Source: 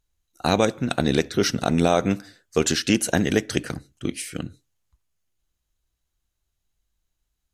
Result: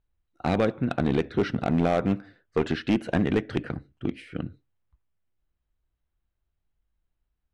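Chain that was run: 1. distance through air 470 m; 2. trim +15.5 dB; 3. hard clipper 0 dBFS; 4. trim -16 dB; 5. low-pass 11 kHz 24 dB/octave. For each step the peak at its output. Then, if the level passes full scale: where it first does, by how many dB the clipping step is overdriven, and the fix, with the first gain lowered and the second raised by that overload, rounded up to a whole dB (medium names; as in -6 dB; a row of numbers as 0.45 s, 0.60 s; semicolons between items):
-7.0 dBFS, +8.5 dBFS, 0.0 dBFS, -16.0 dBFS, -15.5 dBFS; step 2, 8.5 dB; step 2 +6.5 dB, step 4 -7 dB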